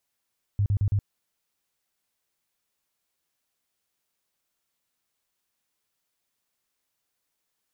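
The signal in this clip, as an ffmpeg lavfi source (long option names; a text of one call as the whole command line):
ffmpeg -f lavfi -i "aevalsrc='0.106*sin(2*PI*101*mod(t,0.11))*lt(mod(t,0.11),7/101)':duration=0.44:sample_rate=44100" out.wav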